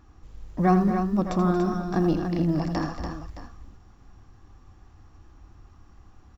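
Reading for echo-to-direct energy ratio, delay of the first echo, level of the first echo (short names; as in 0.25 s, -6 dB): -3.5 dB, 82 ms, -9.5 dB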